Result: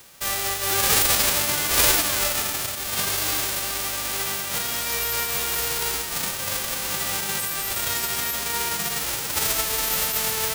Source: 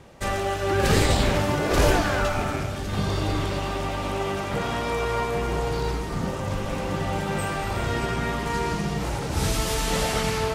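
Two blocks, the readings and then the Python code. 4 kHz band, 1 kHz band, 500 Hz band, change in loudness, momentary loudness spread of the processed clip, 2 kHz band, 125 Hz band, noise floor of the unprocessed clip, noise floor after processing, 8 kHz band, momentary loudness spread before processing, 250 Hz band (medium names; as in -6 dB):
+7.0 dB, -3.0 dB, -7.5 dB, +3.5 dB, 8 LU, +2.0 dB, -12.0 dB, -30 dBFS, -30 dBFS, +12.0 dB, 8 LU, -10.5 dB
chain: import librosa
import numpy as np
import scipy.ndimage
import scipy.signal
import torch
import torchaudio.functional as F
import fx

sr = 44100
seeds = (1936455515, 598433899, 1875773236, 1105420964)

y = fx.envelope_flatten(x, sr, power=0.1)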